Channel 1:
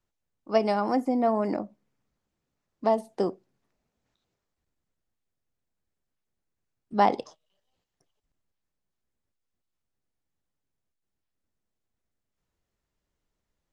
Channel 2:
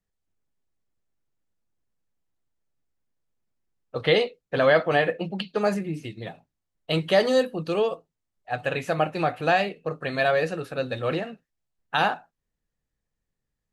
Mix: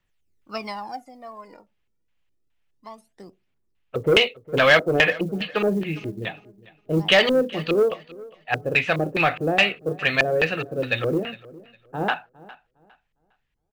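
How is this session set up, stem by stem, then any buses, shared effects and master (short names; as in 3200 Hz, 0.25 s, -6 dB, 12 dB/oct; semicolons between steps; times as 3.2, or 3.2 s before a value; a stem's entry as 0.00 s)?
0.66 s -6.5 dB -> 1.11 s -17 dB, 0.00 s, no send, no echo send, phaser 0.28 Hz, delay 2.4 ms, feedback 72%; auto duck -8 dB, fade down 0.40 s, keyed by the second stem
+2.5 dB, 0.00 s, no send, echo send -20.5 dB, LFO low-pass square 2.4 Hz 390–2800 Hz; soft clip -11.5 dBFS, distortion -18 dB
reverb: off
echo: feedback echo 0.407 s, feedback 25%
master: low shelf 190 Hz +10.5 dB; short-mantissa float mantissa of 6-bit; tilt shelf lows -7 dB, about 740 Hz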